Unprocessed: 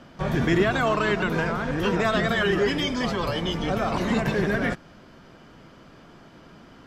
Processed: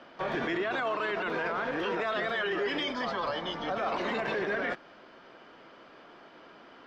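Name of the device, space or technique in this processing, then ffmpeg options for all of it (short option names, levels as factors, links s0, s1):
DJ mixer with the lows and highs turned down: -filter_complex "[0:a]asettb=1/sr,asplit=3[s0][s1][s2];[s0]atrim=end=2.924[s3];[s1]atrim=start=2.92:end=3.78,asetpts=PTS-STARTPTS,afade=t=in:d=0.004:c=qsin,afade=t=out:st=0.856:d=0.004:c=qsin,equalizer=f=400:t=o:w=0.67:g=-8,equalizer=f=2500:t=o:w=0.67:g=-8,equalizer=f=10000:t=o:w=0.67:g=-11[s4];[s2]atrim=start=3.776[s5];[s3][s4]acrossfade=d=0.004:c1=hsin:c2=qsin[s6];[s6][s5]acrossfade=d=0.004:c1=qsin:c2=hsin,acrossover=split=310 4800:gain=0.0891 1 0.0631[s7][s8][s9];[s7][s8][s9]amix=inputs=3:normalize=0,alimiter=limit=0.0708:level=0:latency=1:release=28"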